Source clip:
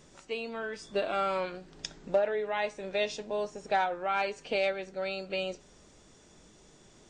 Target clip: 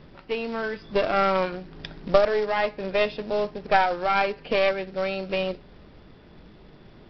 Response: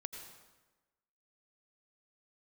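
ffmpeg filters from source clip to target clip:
-af "bass=frequency=250:gain=5,treble=frequency=4000:gain=-14,aeval=exprs='0.168*(cos(1*acos(clip(val(0)/0.168,-1,1)))-cos(1*PI/2))+0.0596*(cos(2*acos(clip(val(0)/0.168,-1,1)))-cos(2*PI/2))+0.00596*(cos(3*acos(clip(val(0)/0.168,-1,1)))-cos(3*PI/2))':channel_layout=same,aresample=11025,acrusher=bits=4:mode=log:mix=0:aa=0.000001,aresample=44100,volume=8dB"

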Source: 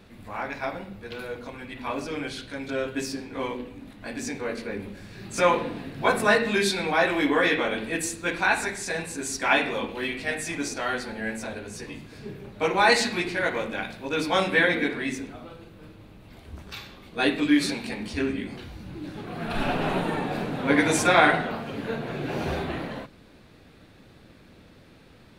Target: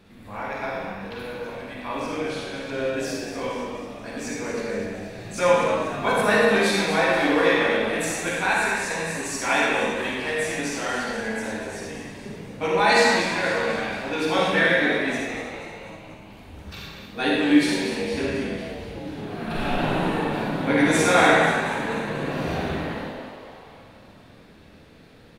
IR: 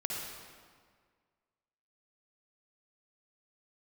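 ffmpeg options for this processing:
-filter_complex "[0:a]asplit=8[link_01][link_02][link_03][link_04][link_05][link_06][link_07][link_08];[link_02]adelay=242,afreqshift=90,volume=-10dB[link_09];[link_03]adelay=484,afreqshift=180,volume=-14.9dB[link_10];[link_04]adelay=726,afreqshift=270,volume=-19.8dB[link_11];[link_05]adelay=968,afreqshift=360,volume=-24.6dB[link_12];[link_06]adelay=1210,afreqshift=450,volume=-29.5dB[link_13];[link_07]adelay=1452,afreqshift=540,volume=-34.4dB[link_14];[link_08]adelay=1694,afreqshift=630,volume=-39.3dB[link_15];[link_01][link_09][link_10][link_11][link_12][link_13][link_14][link_15]amix=inputs=8:normalize=0[link_16];[1:a]atrim=start_sample=2205,afade=type=out:start_time=0.45:duration=0.01,atrim=end_sample=20286,asetrate=57330,aresample=44100[link_17];[link_16][link_17]afir=irnorm=-1:irlink=0,volume=1dB"

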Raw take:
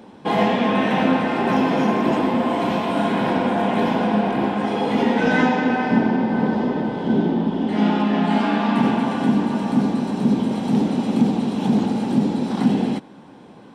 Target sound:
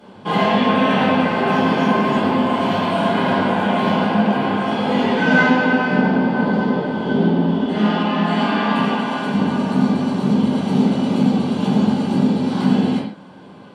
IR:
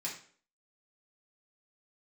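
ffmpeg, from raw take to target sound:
-filter_complex "[0:a]asettb=1/sr,asplit=3[link_01][link_02][link_03];[link_01]atrim=end=8.804[link_04];[link_02]atrim=start=8.8:end=9.34,asetpts=PTS-STARTPTS,afade=type=in:duration=0.004:curve=qsin,afade=type=out:start_time=0.536:duration=0.004:curve=qsin,highpass=frequency=380:poles=1[link_05];[link_03]atrim=start=9.336[link_06];[link_04][link_05]acrossfade=duration=0.004:curve1=hsin:curve2=qsin[link_07];[link_07][link_06]acrossfade=duration=0.004:curve1=qsin:curve2=hsin[link_08];[1:a]atrim=start_sample=2205,atrim=end_sample=4410,asetrate=27783,aresample=44100[link_09];[link_08][link_09]afir=irnorm=-1:irlink=0,volume=-1dB"

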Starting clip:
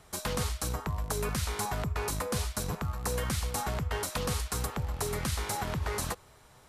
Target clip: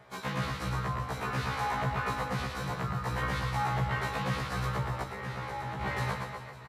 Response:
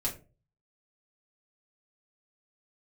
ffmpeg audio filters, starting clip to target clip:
-filter_complex "[0:a]equalizer=frequency=250:width_type=o:width=1:gain=-7,equalizer=frequency=1000:width_type=o:width=1:gain=4,equalizer=frequency=2000:width_type=o:width=1:gain=9,equalizer=frequency=4000:width_type=o:width=1:gain=5,acrossover=split=700|1300[link_01][link_02][link_03];[link_01]acontrast=87[link_04];[link_04][link_02][link_03]amix=inputs=3:normalize=0,highpass=frequency=100:width=0.5412,highpass=frequency=100:width=1.3066,alimiter=limit=-19.5dB:level=0:latency=1:release=18,aecho=1:1:110|236.5|382|549.3|741.7:0.631|0.398|0.251|0.158|0.1,asettb=1/sr,asplit=3[link_05][link_06][link_07];[link_05]atrim=end=5.024[link_08];[link_06]atrim=start=5.02:end=5.81,asetpts=PTS-STARTPTS,afade=type=in:duration=0.004:curve=qsin,afade=type=out:start_time=0.786:duration=0.004:curve=qsin,acrossover=split=210|1700[link_09][link_10][link_11];[link_09]acompressor=threshold=-39dB:ratio=4[link_12];[link_10]acompressor=threshold=-33dB:ratio=4[link_13];[link_11]acompressor=threshold=-41dB:ratio=4[link_14];[link_12][link_13][link_14]amix=inputs=3:normalize=0[link_15];[link_07]atrim=start=5.806[link_16];[link_08][link_15]acrossfade=duration=0.004:curve1=hsin:curve2=qsin[link_17];[link_17][link_16]acrossfade=duration=0.004:curve1=qsin:curve2=hsin,equalizer=frequency=10000:width=0.34:gain=-14.5,afftfilt=real='re*1.73*eq(mod(b,3),0)':imag='im*1.73*eq(mod(b,3),0)':win_size=2048:overlap=0.75"

